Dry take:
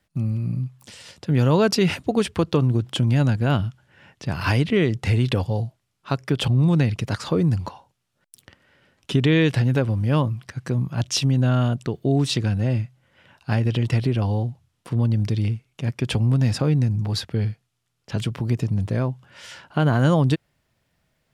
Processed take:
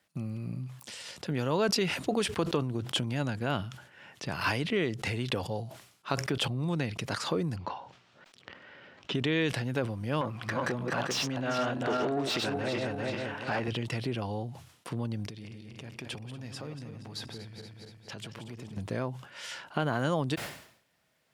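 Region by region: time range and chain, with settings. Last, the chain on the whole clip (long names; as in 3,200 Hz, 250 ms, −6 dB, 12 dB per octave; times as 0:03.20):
0:07.56–0:09.15: upward compression, threshold −38 dBFS + high-frequency loss of the air 170 metres
0:10.21–0:13.68: feedback delay that plays each chunk backwards 196 ms, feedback 48%, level −4.5 dB + downward compressor, threshold −25 dBFS + mid-hump overdrive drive 24 dB, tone 1,400 Hz, clips at −13 dBFS
0:15.26–0:18.77: feedback delay that plays each chunk backwards 118 ms, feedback 61%, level −8 dB + downward compressor 3 to 1, threshold −37 dBFS
whole clip: downward compressor 2 to 1, threshold −26 dBFS; high-pass filter 370 Hz 6 dB per octave; level that may fall only so fast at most 90 dB per second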